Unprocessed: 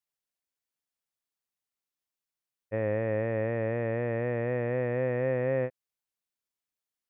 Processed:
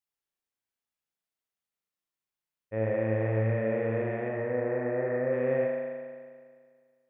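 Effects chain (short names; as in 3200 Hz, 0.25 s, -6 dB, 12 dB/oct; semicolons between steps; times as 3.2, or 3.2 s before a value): 4.28–5.33 LPF 2000 Hz 24 dB/oct; reverb RT60 1.9 s, pre-delay 36 ms, DRR -1.5 dB; gain -3.5 dB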